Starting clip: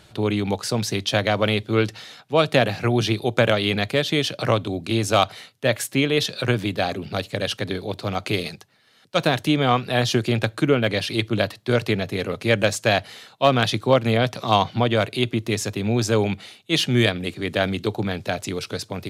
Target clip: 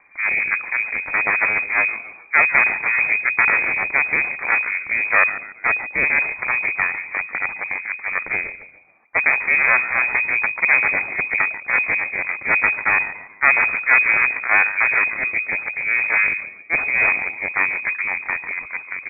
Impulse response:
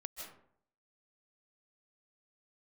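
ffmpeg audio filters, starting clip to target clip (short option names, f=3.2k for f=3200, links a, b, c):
-filter_complex "[0:a]asplit=5[a][b][c][d][e];[b]adelay=142,afreqshift=-65,volume=-11dB[f];[c]adelay=284,afreqshift=-130,volume=-18.5dB[g];[d]adelay=426,afreqshift=-195,volume=-26.1dB[h];[e]adelay=568,afreqshift=-260,volume=-33.6dB[i];[a][f][g][h][i]amix=inputs=5:normalize=0,aeval=exprs='0.708*(cos(1*acos(clip(val(0)/0.708,-1,1)))-cos(1*PI/2))+0.282*(cos(4*acos(clip(val(0)/0.708,-1,1)))-cos(4*PI/2))+0.0631*(cos(8*acos(clip(val(0)/0.708,-1,1)))-cos(8*PI/2))':c=same,lowpass=f=2.1k:t=q:w=0.5098,lowpass=f=2.1k:t=q:w=0.6013,lowpass=f=2.1k:t=q:w=0.9,lowpass=f=2.1k:t=q:w=2.563,afreqshift=-2500,volume=-1.5dB"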